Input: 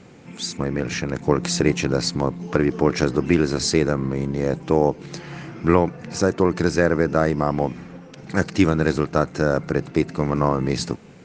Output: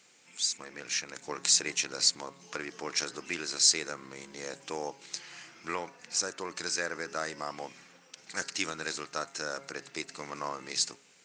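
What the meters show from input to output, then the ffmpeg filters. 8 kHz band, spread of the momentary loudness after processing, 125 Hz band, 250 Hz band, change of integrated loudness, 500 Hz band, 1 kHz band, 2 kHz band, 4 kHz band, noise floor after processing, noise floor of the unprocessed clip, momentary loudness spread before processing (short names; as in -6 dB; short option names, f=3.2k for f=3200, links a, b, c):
+3.0 dB, 16 LU, -30.0 dB, -24.5 dB, -10.0 dB, -19.5 dB, -13.0 dB, -8.0 dB, 0.0 dB, -61 dBFS, -44 dBFS, 8 LU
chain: -af "dynaudnorm=f=220:g=9:m=11.5dB,aderivative,bandreject=f=137.5:t=h:w=4,bandreject=f=275:t=h:w=4,bandreject=f=412.5:t=h:w=4,bandreject=f=550:t=h:w=4,bandreject=f=687.5:t=h:w=4,bandreject=f=825:t=h:w=4,bandreject=f=962.5:t=h:w=4,bandreject=f=1.1k:t=h:w=4,bandreject=f=1.2375k:t=h:w=4,bandreject=f=1.375k:t=h:w=4,bandreject=f=1.5125k:t=h:w=4,bandreject=f=1.65k:t=h:w=4,bandreject=f=1.7875k:t=h:w=4,bandreject=f=1.925k:t=h:w=4,volume=2dB"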